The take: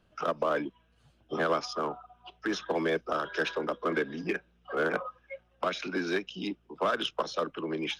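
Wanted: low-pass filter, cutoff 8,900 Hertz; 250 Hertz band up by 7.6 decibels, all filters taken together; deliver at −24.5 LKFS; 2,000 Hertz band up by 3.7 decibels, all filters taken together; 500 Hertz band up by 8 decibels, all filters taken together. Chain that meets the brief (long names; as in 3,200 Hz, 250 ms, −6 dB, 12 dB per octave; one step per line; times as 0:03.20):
low-pass filter 8,900 Hz
parametric band 250 Hz +7 dB
parametric band 500 Hz +7.5 dB
parametric band 2,000 Hz +4.5 dB
level +1.5 dB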